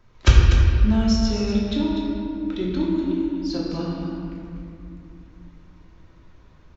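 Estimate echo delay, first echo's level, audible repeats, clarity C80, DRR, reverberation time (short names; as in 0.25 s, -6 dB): 0.245 s, -7.5 dB, 1, 0.0 dB, -6.0 dB, 2.5 s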